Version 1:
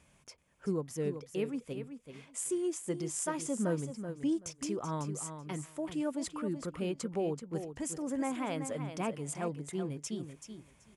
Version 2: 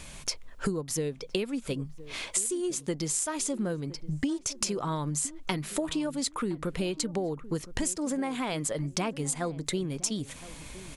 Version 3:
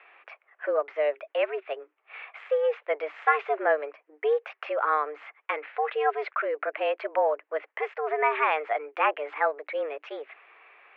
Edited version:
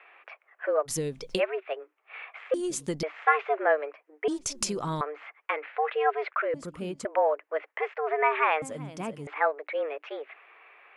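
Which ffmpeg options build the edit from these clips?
-filter_complex "[1:a]asplit=3[s0][s1][s2];[0:a]asplit=2[s3][s4];[2:a]asplit=6[s5][s6][s7][s8][s9][s10];[s5]atrim=end=0.89[s11];[s0]atrim=start=0.85:end=1.41[s12];[s6]atrim=start=1.37:end=2.542[s13];[s1]atrim=start=2.538:end=3.032[s14];[s7]atrim=start=3.028:end=4.282[s15];[s2]atrim=start=4.278:end=5.012[s16];[s8]atrim=start=5.008:end=6.542[s17];[s3]atrim=start=6.538:end=7.052[s18];[s9]atrim=start=7.048:end=8.622[s19];[s4]atrim=start=8.618:end=9.272[s20];[s10]atrim=start=9.268[s21];[s11][s12]acrossfade=d=0.04:c1=tri:c2=tri[s22];[s22][s13]acrossfade=d=0.04:c1=tri:c2=tri[s23];[s23][s14]acrossfade=d=0.004:c1=hsin:c2=hsin[s24];[s24][s15]acrossfade=d=0.004:c1=hsin:c2=hsin[s25];[s25][s16]acrossfade=d=0.004:c1=hsin:c2=hsin[s26];[s26][s17]acrossfade=d=0.004:c1=hsin:c2=hsin[s27];[s27][s18]acrossfade=d=0.004:c1=hsin:c2=hsin[s28];[s28][s19]acrossfade=d=0.004:c1=hsin:c2=hsin[s29];[s29][s20]acrossfade=d=0.004:c1=hsin:c2=hsin[s30];[s30][s21]acrossfade=d=0.004:c1=hsin:c2=hsin"

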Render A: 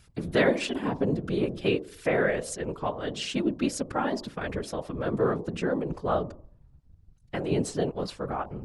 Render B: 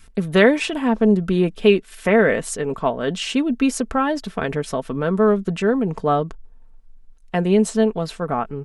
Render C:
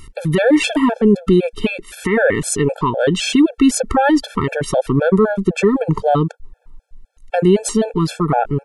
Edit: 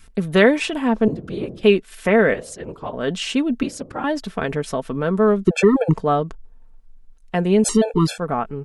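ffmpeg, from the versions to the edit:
-filter_complex "[0:a]asplit=3[s0][s1][s2];[2:a]asplit=2[s3][s4];[1:a]asplit=6[s5][s6][s7][s8][s9][s10];[s5]atrim=end=1.082[s11];[s0]atrim=start=1.078:end=1.632[s12];[s6]atrim=start=1.628:end=2.342[s13];[s1]atrim=start=2.338:end=2.932[s14];[s7]atrim=start=2.928:end=3.632[s15];[s2]atrim=start=3.628:end=4.042[s16];[s8]atrim=start=4.038:end=5.472[s17];[s3]atrim=start=5.468:end=5.942[s18];[s9]atrim=start=5.938:end=7.642[s19];[s4]atrim=start=7.638:end=8.182[s20];[s10]atrim=start=8.178[s21];[s11][s12]acrossfade=d=0.004:c1=hsin:c2=hsin[s22];[s22][s13]acrossfade=d=0.004:c1=hsin:c2=hsin[s23];[s23][s14]acrossfade=d=0.004:c1=hsin:c2=hsin[s24];[s24][s15]acrossfade=d=0.004:c1=hsin:c2=hsin[s25];[s25][s16]acrossfade=d=0.004:c1=hsin:c2=hsin[s26];[s26][s17]acrossfade=d=0.004:c1=hsin:c2=hsin[s27];[s27][s18]acrossfade=d=0.004:c1=hsin:c2=hsin[s28];[s28][s19]acrossfade=d=0.004:c1=hsin:c2=hsin[s29];[s29][s20]acrossfade=d=0.004:c1=hsin:c2=hsin[s30];[s30][s21]acrossfade=d=0.004:c1=hsin:c2=hsin"

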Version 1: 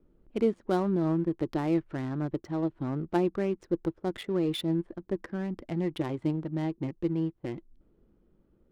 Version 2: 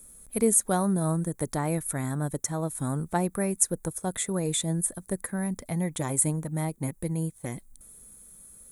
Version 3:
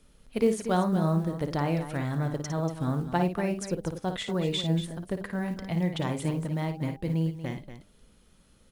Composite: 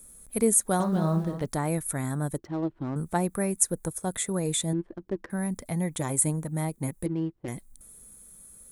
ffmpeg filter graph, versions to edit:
-filter_complex "[0:a]asplit=3[s0][s1][s2];[1:a]asplit=5[s3][s4][s5][s6][s7];[s3]atrim=end=0.802[s8];[2:a]atrim=start=0.798:end=1.462[s9];[s4]atrim=start=1.458:end=2.382[s10];[s0]atrim=start=2.378:end=2.962[s11];[s5]atrim=start=2.958:end=4.732[s12];[s1]atrim=start=4.728:end=5.302[s13];[s6]atrim=start=5.298:end=7.062[s14];[s2]atrim=start=7.058:end=7.482[s15];[s7]atrim=start=7.478[s16];[s8][s9]acrossfade=d=0.004:c1=hsin:c2=hsin[s17];[s17][s10]acrossfade=d=0.004:c1=hsin:c2=hsin[s18];[s18][s11]acrossfade=d=0.004:c1=hsin:c2=hsin[s19];[s19][s12]acrossfade=d=0.004:c1=hsin:c2=hsin[s20];[s20][s13]acrossfade=d=0.004:c1=hsin:c2=hsin[s21];[s21][s14]acrossfade=d=0.004:c1=hsin:c2=hsin[s22];[s22][s15]acrossfade=d=0.004:c1=hsin:c2=hsin[s23];[s23][s16]acrossfade=d=0.004:c1=hsin:c2=hsin"

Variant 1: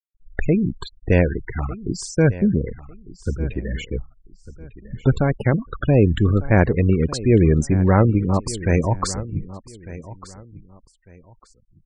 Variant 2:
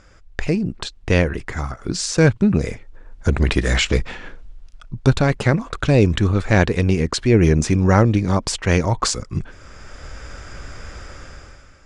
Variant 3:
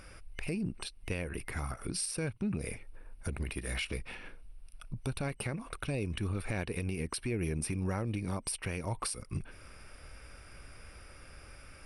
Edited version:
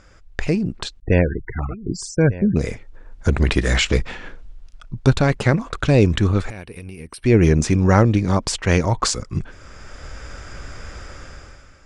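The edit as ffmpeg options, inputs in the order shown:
-filter_complex "[1:a]asplit=3[s0][s1][s2];[s0]atrim=end=1.002[s3];[0:a]atrim=start=0.998:end=2.562[s4];[s1]atrim=start=2.558:end=6.502[s5];[2:a]atrim=start=6.498:end=7.242[s6];[s2]atrim=start=7.238[s7];[s3][s4]acrossfade=d=0.004:c1=hsin:c2=hsin[s8];[s8][s5]acrossfade=d=0.004:c1=hsin:c2=hsin[s9];[s9][s6]acrossfade=d=0.004:c1=hsin:c2=hsin[s10];[s10][s7]acrossfade=d=0.004:c1=hsin:c2=hsin"

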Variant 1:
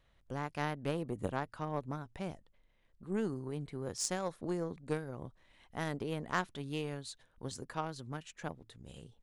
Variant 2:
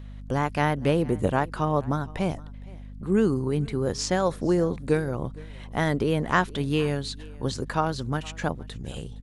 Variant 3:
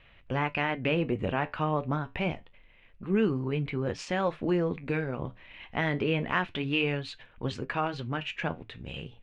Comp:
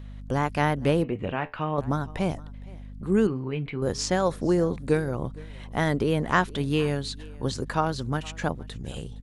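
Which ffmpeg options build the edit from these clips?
-filter_complex "[2:a]asplit=2[s0][s1];[1:a]asplit=3[s2][s3][s4];[s2]atrim=end=1.042[s5];[s0]atrim=start=1.038:end=1.782[s6];[s3]atrim=start=1.778:end=3.272[s7];[s1]atrim=start=3.268:end=3.822[s8];[s4]atrim=start=3.818[s9];[s5][s6]acrossfade=d=0.004:c1=hsin:c2=hsin[s10];[s10][s7]acrossfade=d=0.004:c1=hsin:c2=hsin[s11];[s11][s8]acrossfade=d=0.004:c1=hsin:c2=hsin[s12];[s12][s9]acrossfade=d=0.004:c1=hsin:c2=hsin"

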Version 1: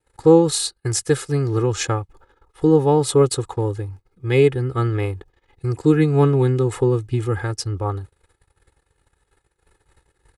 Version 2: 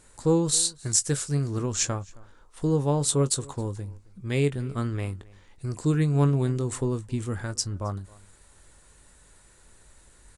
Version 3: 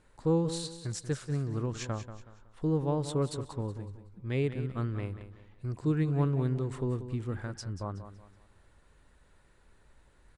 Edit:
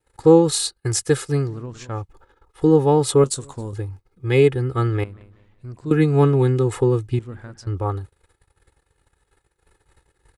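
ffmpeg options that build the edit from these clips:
-filter_complex "[2:a]asplit=3[s0][s1][s2];[0:a]asplit=5[s3][s4][s5][s6][s7];[s3]atrim=end=1.56[s8];[s0]atrim=start=1.4:end=2.04[s9];[s4]atrim=start=1.88:end=3.242[s10];[1:a]atrim=start=3.238:end=3.732[s11];[s5]atrim=start=3.728:end=5.042[s12];[s1]atrim=start=5.038:end=5.912[s13];[s6]atrim=start=5.908:end=7.192[s14];[s2]atrim=start=7.188:end=7.672[s15];[s7]atrim=start=7.668[s16];[s8][s9]acrossfade=d=0.16:c1=tri:c2=tri[s17];[s17][s10]acrossfade=d=0.16:c1=tri:c2=tri[s18];[s18][s11]acrossfade=d=0.004:c1=hsin:c2=hsin[s19];[s19][s12]acrossfade=d=0.004:c1=hsin:c2=hsin[s20];[s20][s13]acrossfade=d=0.004:c1=hsin:c2=hsin[s21];[s21][s14]acrossfade=d=0.004:c1=hsin:c2=hsin[s22];[s22][s15]acrossfade=d=0.004:c1=hsin:c2=hsin[s23];[s23][s16]acrossfade=d=0.004:c1=hsin:c2=hsin"

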